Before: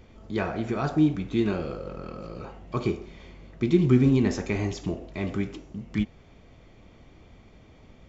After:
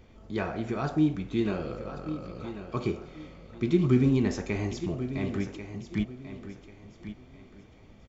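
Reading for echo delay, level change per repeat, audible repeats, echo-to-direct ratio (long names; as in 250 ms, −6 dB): 1,091 ms, −10.5 dB, 3, −11.0 dB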